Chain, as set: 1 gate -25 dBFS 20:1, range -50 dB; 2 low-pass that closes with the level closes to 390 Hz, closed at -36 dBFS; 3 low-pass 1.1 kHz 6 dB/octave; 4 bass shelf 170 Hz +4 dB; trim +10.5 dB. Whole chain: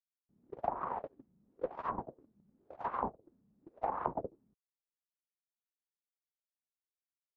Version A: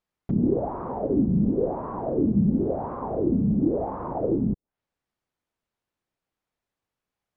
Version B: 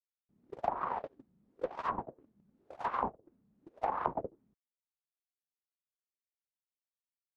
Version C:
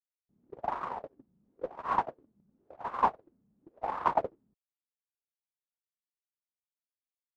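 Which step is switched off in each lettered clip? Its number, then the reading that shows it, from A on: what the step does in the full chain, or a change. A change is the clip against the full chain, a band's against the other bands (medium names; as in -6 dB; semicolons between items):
1, momentary loudness spread change -6 LU; 3, 2 kHz band +4.5 dB; 2, 2 kHz band +6.5 dB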